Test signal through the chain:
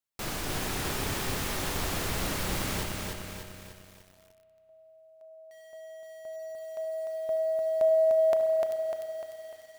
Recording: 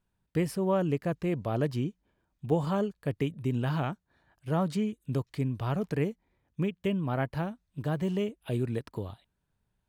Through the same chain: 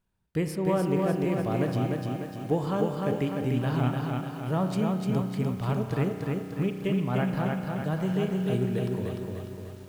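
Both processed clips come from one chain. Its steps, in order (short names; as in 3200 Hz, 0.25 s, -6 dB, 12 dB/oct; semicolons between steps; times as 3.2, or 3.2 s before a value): spring tank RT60 2.8 s, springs 32 ms, chirp 35 ms, DRR 6.5 dB; lo-fi delay 0.299 s, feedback 55%, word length 9-bit, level -3 dB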